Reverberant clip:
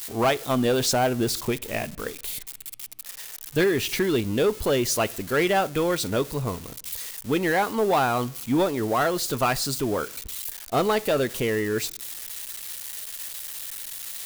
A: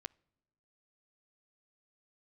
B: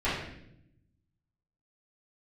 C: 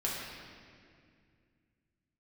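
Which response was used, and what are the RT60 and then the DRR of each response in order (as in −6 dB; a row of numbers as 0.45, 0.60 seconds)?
A; non-exponential decay, 0.75 s, 2.2 s; 19.5, −13.5, −5.5 decibels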